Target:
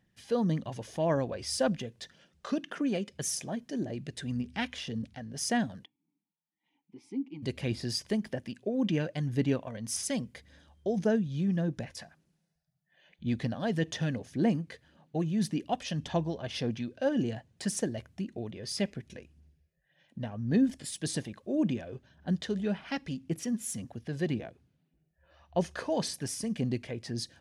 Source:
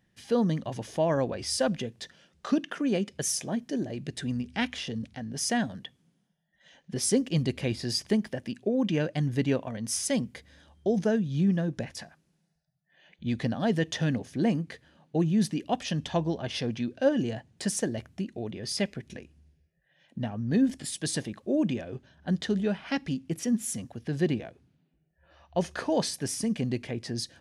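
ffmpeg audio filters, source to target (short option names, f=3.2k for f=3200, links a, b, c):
-filter_complex "[0:a]aphaser=in_gain=1:out_gain=1:delay=2:decay=0.3:speed=1.8:type=sinusoidal,asplit=3[a][b][c];[a]afade=t=out:st=5.84:d=0.02[d];[b]asplit=3[e][f][g];[e]bandpass=f=300:t=q:w=8,volume=0dB[h];[f]bandpass=f=870:t=q:w=8,volume=-6dB[i];[g]bandpass=f=2.24k:t=q:w=8,volume=-9dB[j];[h][i][j]amix=inputs=3:normalize=0,afade=t=in:st=5.84:d=0.02,afade=t=out:st=7.42:d=0.02[k];[c]afade=t=in:st=7.42:d=0.02[l];[d][k][l]amix=inputs=3:normalize=0,volume=-4dB"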